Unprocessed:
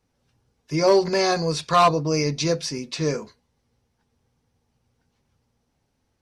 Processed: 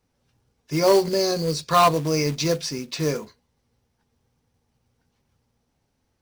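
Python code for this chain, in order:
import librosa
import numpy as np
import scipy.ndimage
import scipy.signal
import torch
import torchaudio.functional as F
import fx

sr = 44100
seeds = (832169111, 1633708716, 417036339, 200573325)

y = fx.spec_box(x, sr, start_s=1.06, length_s=0.62, low_hz=620.0, high_hz=3800.0, gain_db=-10)
y = fx.quant_float(y, sr, bits=2)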